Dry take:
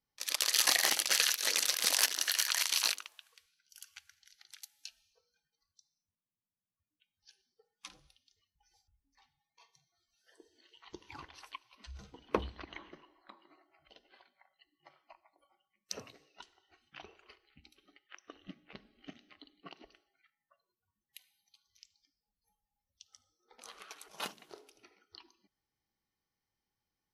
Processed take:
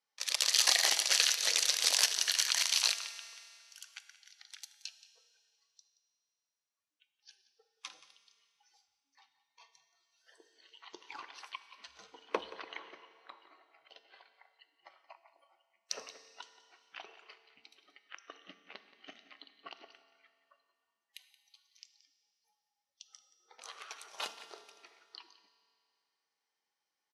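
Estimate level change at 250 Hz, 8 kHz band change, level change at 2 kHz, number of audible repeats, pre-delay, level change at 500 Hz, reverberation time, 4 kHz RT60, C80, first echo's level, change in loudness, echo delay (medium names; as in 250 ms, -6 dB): -8.0 dB, +1.0 dB, -0.5 dB, 1, 4 ms, -2.0 dB, 2.5 s, 2.4 s, 12.0 dB, -17.0 dB, +1.0 dB, 176 ms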